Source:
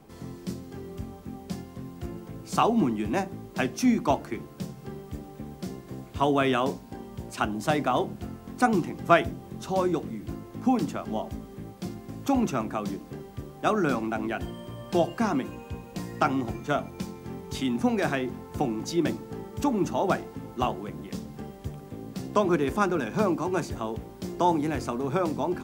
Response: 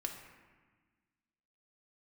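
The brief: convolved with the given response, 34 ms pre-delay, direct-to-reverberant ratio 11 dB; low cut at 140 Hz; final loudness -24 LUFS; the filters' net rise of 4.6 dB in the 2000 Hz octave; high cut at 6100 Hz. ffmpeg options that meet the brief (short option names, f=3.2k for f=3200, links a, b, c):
-filter_complex "[0:a]highpass=140,lowpass=6.1k,equalizer=f=2k:t=o:g=6.5,asplit=2[a][b];[1:a]atrim=start_sample=2205,adelay=34[c];[b][c]afir=irnorm=-1:irlink=0,volume=-11dB[d];[a][d]amix=inputs=2:normalize=0,volume=3dB"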